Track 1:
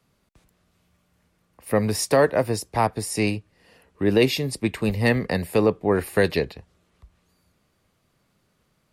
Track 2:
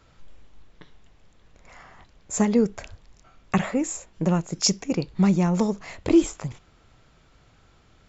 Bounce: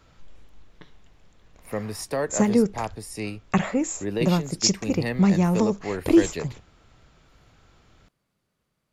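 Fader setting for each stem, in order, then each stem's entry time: −9.0, +0.5 decibels; 0.00, 0.00 seconds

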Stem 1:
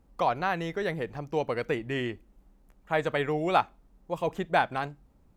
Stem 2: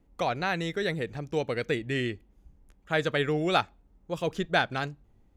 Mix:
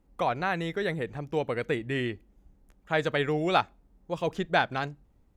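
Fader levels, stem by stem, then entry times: −6.5, −4.5 decibels; 0.00, 0.00 seconds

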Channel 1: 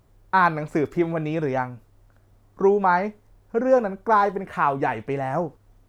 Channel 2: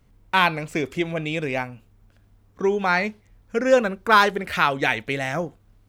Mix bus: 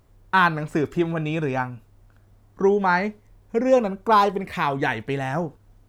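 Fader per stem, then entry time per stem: 0.0, −7.5 decibels; 0.00, 0.00 seconds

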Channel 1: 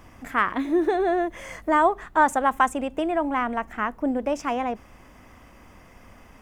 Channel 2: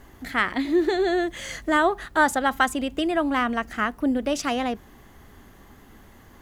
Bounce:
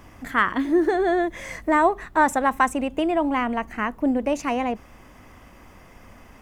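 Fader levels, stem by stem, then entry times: +1.5, −9.5 decibels; 0.00, 0.00 seconds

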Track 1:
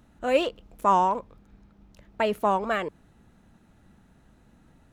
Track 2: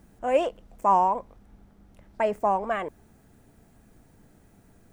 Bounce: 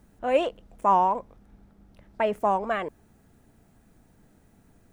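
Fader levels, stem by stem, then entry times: −10.0, −3.0 decibels; 0.00, 0.00 seconds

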